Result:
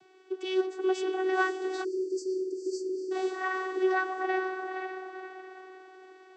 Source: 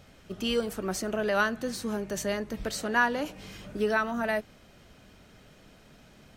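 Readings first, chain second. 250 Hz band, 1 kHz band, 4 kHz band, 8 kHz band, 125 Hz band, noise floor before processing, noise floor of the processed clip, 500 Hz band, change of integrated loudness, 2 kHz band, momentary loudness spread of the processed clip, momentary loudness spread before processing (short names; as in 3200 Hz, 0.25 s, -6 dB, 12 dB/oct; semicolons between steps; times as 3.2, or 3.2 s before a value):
-0.5 dB, -0.5 dB, -6.0 dB, -10.5 dB, under -35 dB, -56 dBFS, -56 dBFS, +1.5 dB, -1.5 dB, -3.0 dB, 16 LU, 9 LU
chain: diffused feedback echo 0.495 s, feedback 44%, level -5 dB; vocoder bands 16, saw 375 Hz; spectral delete 1.84–3.12, 530–4500 Hz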